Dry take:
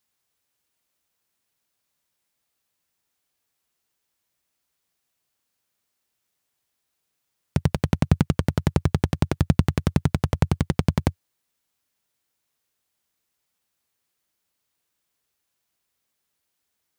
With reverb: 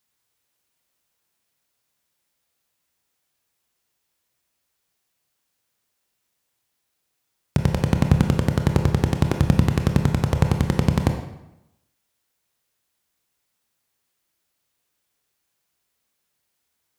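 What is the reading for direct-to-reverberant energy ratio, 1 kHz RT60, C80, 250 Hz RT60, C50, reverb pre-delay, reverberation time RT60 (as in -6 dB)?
4.5 dB, 0.90 s, 9.5 dB, 0.90 s, 7.0 dB, 21 ms, 0.90 s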